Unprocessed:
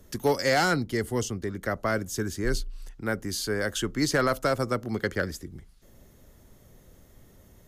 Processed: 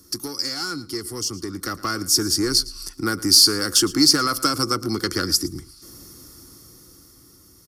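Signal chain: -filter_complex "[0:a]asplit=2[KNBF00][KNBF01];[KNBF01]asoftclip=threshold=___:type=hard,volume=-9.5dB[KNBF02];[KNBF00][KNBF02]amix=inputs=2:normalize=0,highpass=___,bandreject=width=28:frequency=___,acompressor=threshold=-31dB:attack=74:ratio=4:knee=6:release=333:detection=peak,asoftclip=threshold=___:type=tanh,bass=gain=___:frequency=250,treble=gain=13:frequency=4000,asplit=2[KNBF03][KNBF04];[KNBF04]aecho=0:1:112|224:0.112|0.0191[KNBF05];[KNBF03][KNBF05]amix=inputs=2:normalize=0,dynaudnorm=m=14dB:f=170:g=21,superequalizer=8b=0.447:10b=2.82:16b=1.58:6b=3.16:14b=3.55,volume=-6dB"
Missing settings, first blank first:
-29dB, 57, 3000, -22dB, 2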